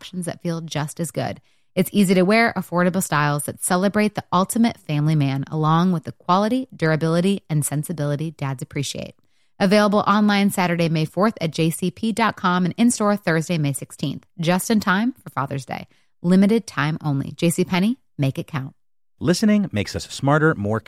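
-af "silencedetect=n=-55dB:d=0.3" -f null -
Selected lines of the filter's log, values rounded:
silence_start: 18.73
silence_end: 19.18 | silence_duration: 0.45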